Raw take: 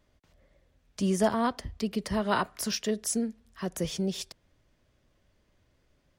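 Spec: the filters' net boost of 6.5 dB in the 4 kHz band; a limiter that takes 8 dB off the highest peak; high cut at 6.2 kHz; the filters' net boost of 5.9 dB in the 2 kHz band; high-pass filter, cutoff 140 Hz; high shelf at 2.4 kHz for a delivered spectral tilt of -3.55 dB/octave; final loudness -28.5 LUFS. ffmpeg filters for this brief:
-af "highpass=140,lowpass=6200,equalizer=f=2000:t=o:g=5.5,highshelf=f=2400:g=4.5,equalizer=f=4000:t=o:g=4,volume=1.26,alimiter=limit=0.15:level=0:latency=1"

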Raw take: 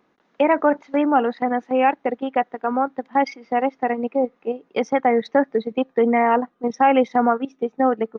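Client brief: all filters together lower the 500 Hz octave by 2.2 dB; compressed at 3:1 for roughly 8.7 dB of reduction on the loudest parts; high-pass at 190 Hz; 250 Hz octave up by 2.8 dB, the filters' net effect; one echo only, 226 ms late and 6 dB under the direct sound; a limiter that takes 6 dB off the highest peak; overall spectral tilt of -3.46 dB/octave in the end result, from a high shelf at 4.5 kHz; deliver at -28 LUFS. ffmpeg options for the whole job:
-af "highpass=190,equalizer=f=250:t=o:g=5,equalizer=f=500:t=o:g=-3.5,highshelf=f=4500:g=9,acompressor=threshold=0.0631:ratio=3,alimiter=limit=0.126:level=0:latency=1,aecho=1:1:226:0.501"

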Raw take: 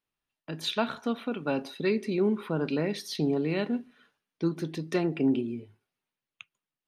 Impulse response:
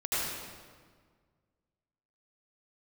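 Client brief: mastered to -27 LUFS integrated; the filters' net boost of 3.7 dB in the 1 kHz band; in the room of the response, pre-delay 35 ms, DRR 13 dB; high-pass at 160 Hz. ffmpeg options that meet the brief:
-filter_complex "[0:a]highpass=160,equalizer=f=1000:t=o:g=5,asplit=2[s0][s1];[1:a]atrim=start_sample=2205,adelay=35[s2];[s1][s2]afir=irnorm=-1:irlink=0,volume=0.0794[s3];[s0][s3]amix=inputs=2:normalize=0,volume=1.41"

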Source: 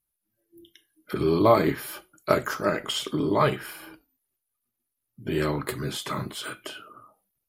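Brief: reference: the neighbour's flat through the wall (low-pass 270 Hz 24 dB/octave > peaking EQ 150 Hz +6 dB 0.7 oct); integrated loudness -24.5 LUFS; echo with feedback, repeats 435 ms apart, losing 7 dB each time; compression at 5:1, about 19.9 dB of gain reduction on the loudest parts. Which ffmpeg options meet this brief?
-af "acompressor=threshold=0.0141:ratio=5,lowpass=f=270:w=0.5412,lowpass=f=270:w=1.3066,equalizer=f=150:t=o:w=0.7:g=6,aecho=1:1:435|870|1305|1740|2175:0.447|0.201|0.0905|0.0407|0.0183,volume=9.44"

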